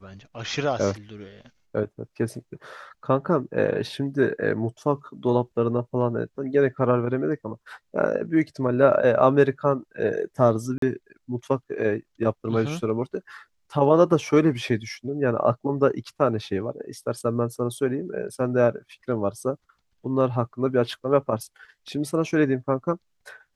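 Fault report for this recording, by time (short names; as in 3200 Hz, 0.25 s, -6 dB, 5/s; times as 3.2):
10.78–10.82 gap 43 ms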